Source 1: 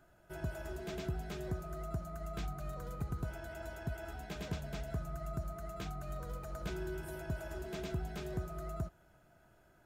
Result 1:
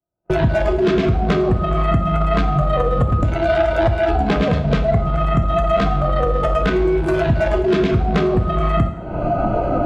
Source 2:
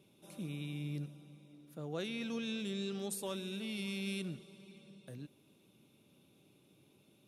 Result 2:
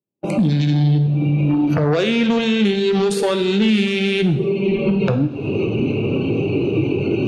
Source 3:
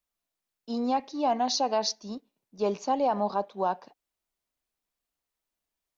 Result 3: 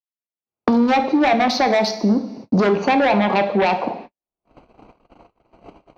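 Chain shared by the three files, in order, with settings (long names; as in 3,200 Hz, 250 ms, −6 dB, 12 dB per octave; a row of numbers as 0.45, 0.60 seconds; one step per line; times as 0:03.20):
adaptive Wiener filter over 25 samples
camcorder AGC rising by 40 dB per second
low-pass filter 3,200 Hz 12 dB per octave
in parallel at −3 dB: sine wavefolder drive 11 dB, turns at −14.5 dBFS
on the sum: brickwall limiter −21 dBFS
noise reduction from a noise print of the clip's start 10 dB
high-pass filter 78 Hz 6 dB per octave
coupled-rooms reverb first 0.59 s, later 1.5 s, DRR 6.5 dB
noise gate −48 dBFS, range −59 dB
multiband upward and downward compressor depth 70%
loudness normalisation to −18 LKFS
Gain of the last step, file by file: +12.5, +11.0, +8.5 decibels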